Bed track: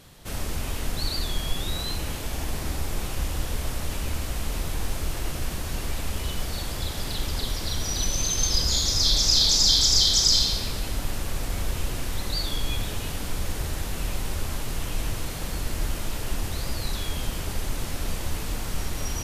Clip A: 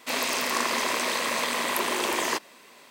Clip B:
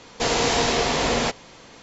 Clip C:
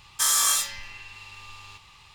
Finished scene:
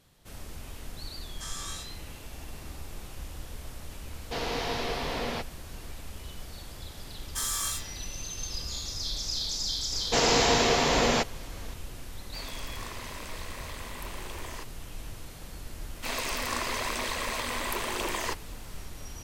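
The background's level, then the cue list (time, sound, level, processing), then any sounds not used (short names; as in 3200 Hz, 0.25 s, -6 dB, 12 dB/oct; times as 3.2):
bed track -12.5 dB
1.21 add C -15.5 dB + LPF 7000 Hz
4.11 add B -10.5 dB + LPF 5200 Hz 24 dB/oct
7.16 add C -10 dB
9.92 add B -2 dB
12.26 add A -16 dB
15.96 add A -6 dB + phaser 0.96 Hz, delay 4.2 ms, feedback 26%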